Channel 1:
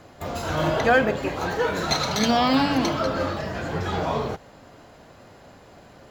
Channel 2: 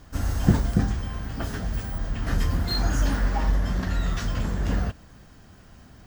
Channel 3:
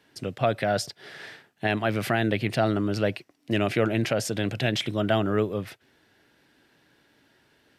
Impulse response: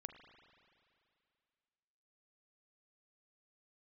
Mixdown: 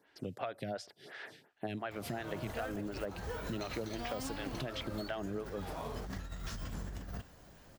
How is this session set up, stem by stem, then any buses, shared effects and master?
-14.5 dB, 1.70 s, no send, short-mantissa float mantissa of 2-bit
-14.5 dB, 2.30 s, no send, compressor with a negative ratio -26 dBFS, ratio -0.5; treble shelf 6.1 kHz +9.5 dB; vibrato with a chosen wave saw up 3.6 Hz, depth 100 cents
-3.5 dB, 0.00 s, no send, lamp-driven phase shifter 2.8 Hz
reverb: none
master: compression 6:1, threshold -36 dBFS, peak gain reduction 13 dB

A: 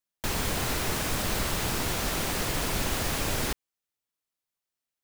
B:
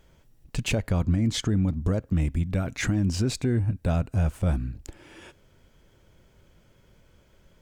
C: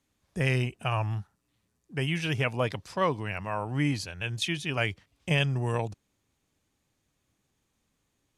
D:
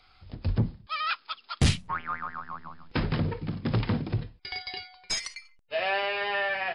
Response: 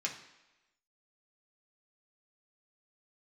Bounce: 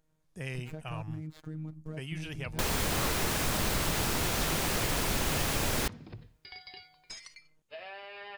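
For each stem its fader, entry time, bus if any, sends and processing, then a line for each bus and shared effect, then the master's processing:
+2.0 dB, 2.35 s, send -23 dB, none
-13.5 dB, 0.00 s, no send, median filter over 15 samples; robot voice 156 Hz
-12.0 dB, 0.00 s, no send, treble shelf 6.6 kHz +7.5 dB
-10.5 dB, 2.00 s, no send, compression, threshold -31 dBFS, peak gain reduction 12.5 dB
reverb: on, RT60 1.0 s, pre-delay 3 ms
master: compression 1.5:1, threshold -32 dBFS, peak gain reduction 4 dB

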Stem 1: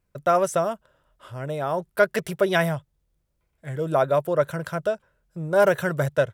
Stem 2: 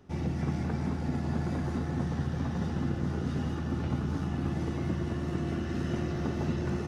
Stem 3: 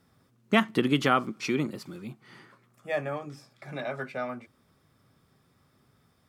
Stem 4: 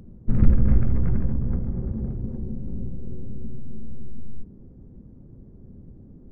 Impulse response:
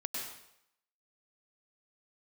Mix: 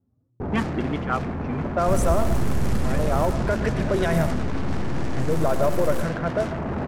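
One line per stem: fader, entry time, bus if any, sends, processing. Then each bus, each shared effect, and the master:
0.0 dB, 1.50 s, send -8.5 dB, peak limiter -16.5 dBFS, peak gain reduction 10 dB
+2.5 dB, 0.40 s, send -4.5 dB, one-bit comparator; auto duck -8 dB, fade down 1.20 s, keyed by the third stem
+1.0 dB, 0.00 s, no send, peaking EQ 420 Hz -4 dB 0.78 oct; cancelling through-zero flanger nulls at 0.47 Hz, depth 6.6 ms
-1.5 dB, 1.60 s, send -8.5 dB, overload inside the chain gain 19.5 dB; bit crusher 7-bit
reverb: on, RT60 0.75 s, pre-delay 94 ms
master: level-controlled noise filter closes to 410 Hz, open at -15.5 dBFS; peaking EQ 3.5 kHz -6.5 dB 1.5 oct

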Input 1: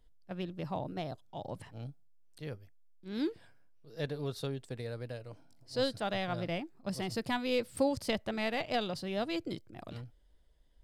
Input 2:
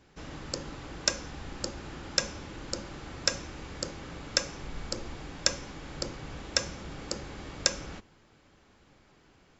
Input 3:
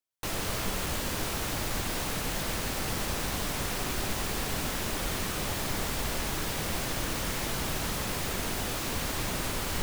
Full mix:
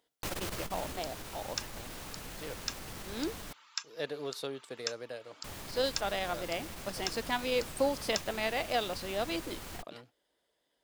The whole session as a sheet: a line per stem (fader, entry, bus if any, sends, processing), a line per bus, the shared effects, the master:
+2.5 dB, 0.00 s, no send, high-pass 360 Hz 12 dB/octave
-6.5 dB, 0.50 s, no send, reverb removal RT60 0.59 s; rippled Chebyshev high-pass 870 Hz, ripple 6 dB
+1.0 dB, 0.00 s, muted 3.53–5.44 s, no send, auto duck -13 dB, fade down 1.10 s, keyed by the first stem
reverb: none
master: transformer saturation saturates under 340 Hz

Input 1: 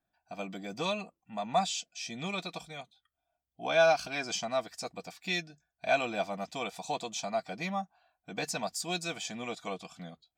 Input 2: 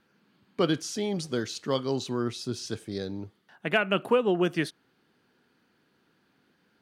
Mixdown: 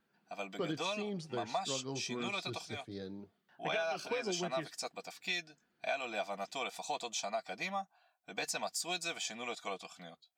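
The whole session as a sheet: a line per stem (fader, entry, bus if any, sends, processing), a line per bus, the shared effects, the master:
0.0 dB, 0.00 s, no send, high-pass 570 Hz 6 dB/octave
-6.5 dB, 0.00 s, no send, treble shelf 9.2 kHz -12 dB; flange 0.9 Hz, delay 4.3 ms, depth 3.6 ms, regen -41%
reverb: none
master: compression 10:1, threshold -32 dBFS, peak gain reduction 12.5 dB

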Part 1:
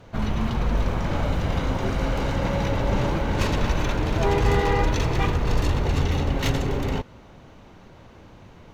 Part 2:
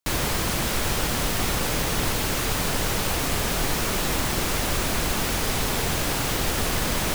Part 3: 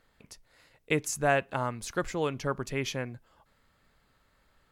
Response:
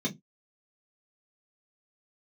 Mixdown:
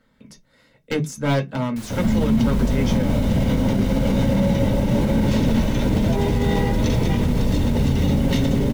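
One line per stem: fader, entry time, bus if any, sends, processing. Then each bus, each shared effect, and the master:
-2.5 dB, 1.90 s, send -8.5 dB, peaking EQ 1.3 kHz -8.5 dB 0.91 oct; level flattener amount 70%
-15.0 dB, 1.70 s, no send, none
+2.0 dB, 0.00 s, send -6 dB, one-sided wavefolder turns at -25.5 dBFS; de-esser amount 60%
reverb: on, pre-delay 3 ms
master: peak limiter -10 dBFS, peak gain reduction 6.5 dB

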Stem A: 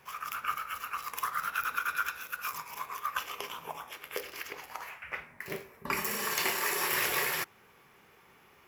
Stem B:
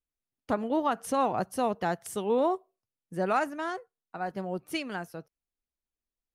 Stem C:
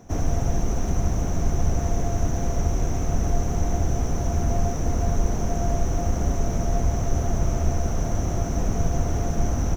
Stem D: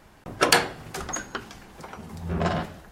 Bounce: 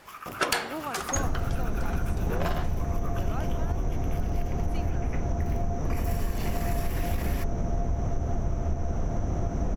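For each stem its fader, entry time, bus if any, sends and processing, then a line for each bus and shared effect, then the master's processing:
-3.0 dB, 0.00 s, no send, peak limiter -23.5 dBFS, peak gain reduction 9 dB
-8.0 dB, 0.00 s, no send, none
+0.5 dB, 1.05 s, no send, low-pass 1.8 kHz 6 dB/octave
+3.0 dB, 0.00 s, no send, bass shelf 350 Hz -8.5 dB; one-sided clip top -13.5 dBFS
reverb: none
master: compression, threshold -23 dBFS, peak gain reduction 10.5 dB

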